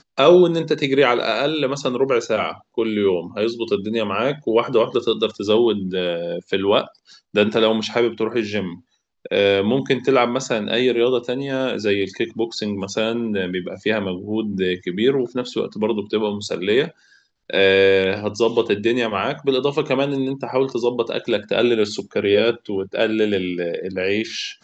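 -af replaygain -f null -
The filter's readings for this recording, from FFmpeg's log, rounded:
track_gain = -0.6 dB
track_peak = 0.585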